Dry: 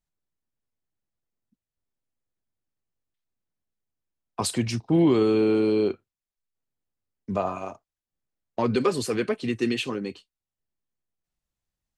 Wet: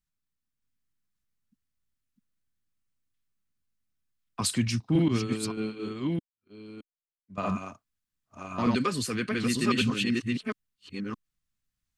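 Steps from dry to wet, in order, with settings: chunks repeated in reverse 619 ms, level -0.5 dB; high-order bell 560 Hz -10 dB; 5.08–7.38 s: expander -17 dBFS

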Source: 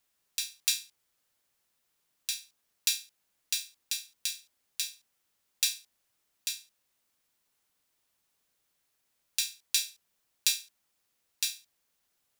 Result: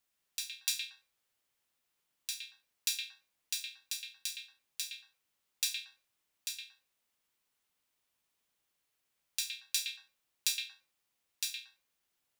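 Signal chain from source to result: repeats whose band climbs or falls 115 ms, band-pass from 2.6 kHz, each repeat -1.4 oct, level 0 dB; trim -5.5 dB

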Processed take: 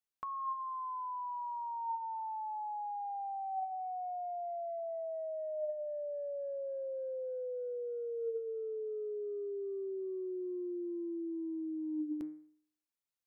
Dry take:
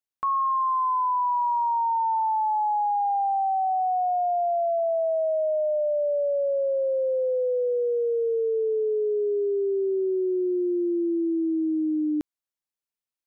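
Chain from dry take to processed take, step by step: de-hum 153.1 Hz, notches 15; compressor with a negative ratio -30 dBFS, ratio -1; trim -9 dB

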